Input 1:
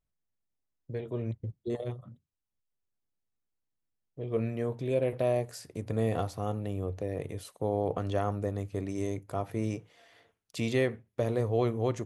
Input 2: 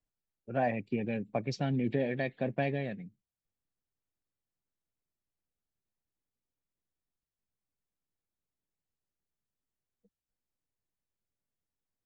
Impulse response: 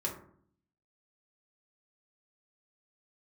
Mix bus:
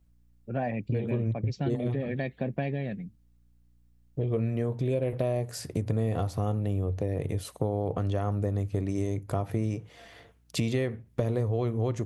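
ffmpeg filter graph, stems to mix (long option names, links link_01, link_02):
-filter_complex "[0:a]acontrast=38,volume=2.5dB[link_01];[1:a]aeval=exprs='val(0)+0.000282*(sin(2*PI*60*n/s)+sin(2*PI*2*60*n/s)/2+sin(2*PI*3*60*n/s)/3+sin(2*PI*4*60*n/s)/4+sin(2*PI*5*60*n/s)/5)':channel_layout=same,volume=1dB[link_02];[link_01][link_02]amix=inputs=2:normalize=0,lowshelf=frequency=210:gain=9,acompressor=threshold=-26dB:ratio=5"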